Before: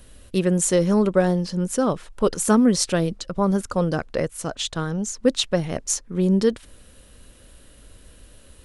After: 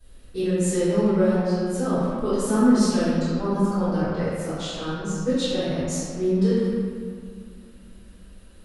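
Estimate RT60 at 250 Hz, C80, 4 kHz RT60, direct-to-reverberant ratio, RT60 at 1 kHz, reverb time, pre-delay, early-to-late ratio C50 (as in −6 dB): 3.1 s, −2.0 dB, 1.2 s, −21.0 dB, 2.1 s, 2.2 s, 3 ms, −5.0 dB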